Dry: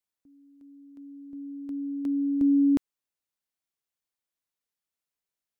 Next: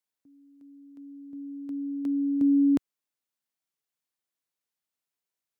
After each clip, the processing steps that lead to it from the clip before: HPF 100 Hz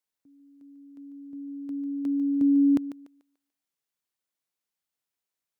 thinning echo 0.146 s, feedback 33%, high-pass 340 Hz, level -11 dB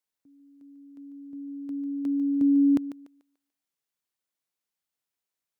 nothing audible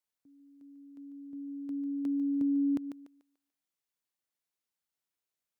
compressor 2.5:1, threshold -26 dBFS, peak gain reduction 5.5 dB; gain -3 dB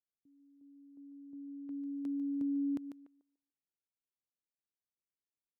low-pass opened by the level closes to 410 Hz, open at -31.5 dBFS; gain -5.5 dB

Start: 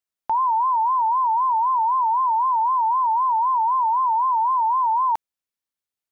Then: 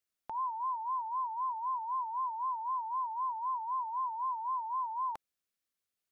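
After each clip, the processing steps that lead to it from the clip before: limiter -27.5 dBFS, peak gain reduction 11 dB; bell 900 Hz -9 dB 0.23 oct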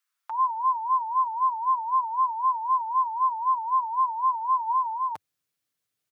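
comb 6.6 ms, depth 43%; high-pass sweep 1200 Hz -> 95 Hz, 4.66–5.16; gain +5 dB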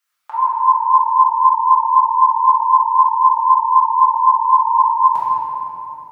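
compressor, threshold -24 dBFS, peak gain reduction 5 dB; shoebox room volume 190 m³, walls hard, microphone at 1.3 m; gain +3 dB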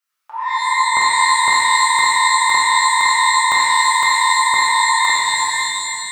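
crackling interface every 0.51 s, samples 2048, zero, from 0.97; shimmer reverb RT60 1.4 s, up +12 st, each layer -2 dB, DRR -2 dB; gain -6 dB

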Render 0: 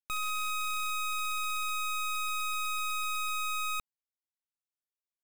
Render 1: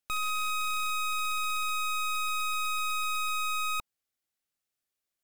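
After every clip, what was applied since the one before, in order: notch 970 Hz, Q 5.1; in parallel at -8 dB: sine folder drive 8 dB, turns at -28.5 dBFS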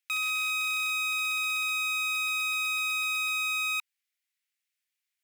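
resonant high-pass 2100 Hz, resonance Q 2.3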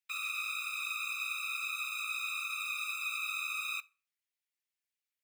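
whisperiser; on a send at -17 dB: reverb RT60 0.45 s, pre-delay 3 ms; on the sum: gain -8 dB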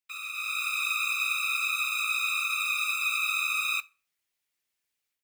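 AGC gain up to 10 dB; modulation noise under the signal 29 dB; gain -1.5 dB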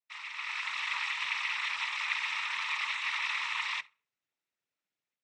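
LPF 1800 Hz 6 dB/oct; noise vocoder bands 12

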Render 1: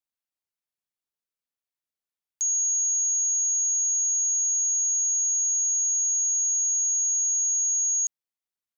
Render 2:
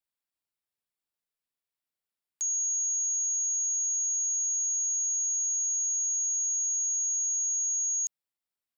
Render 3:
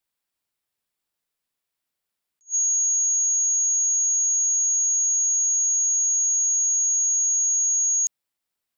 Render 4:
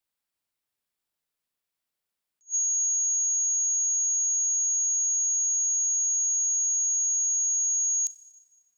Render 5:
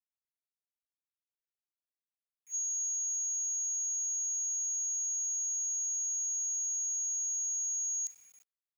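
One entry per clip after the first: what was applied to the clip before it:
notch 6300 Hz, Q 6.1
attack slew limiter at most 410 dB/s; gain +7.5 dB
Schroeder reverb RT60 1.5 s, combs from 30 ms, DRR 15 dB; gain -3 dB
bit-crush 9-bit; gain -8.5 dB

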